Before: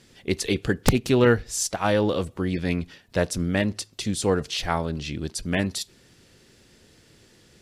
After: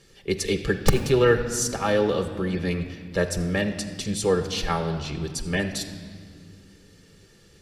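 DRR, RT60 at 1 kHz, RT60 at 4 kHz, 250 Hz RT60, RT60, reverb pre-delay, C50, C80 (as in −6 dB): 5.0 dB, 1.8 s, 1.6 s, 3.2 s, 1.9 s, 5 ms, 9.5 dB, 10.5 dB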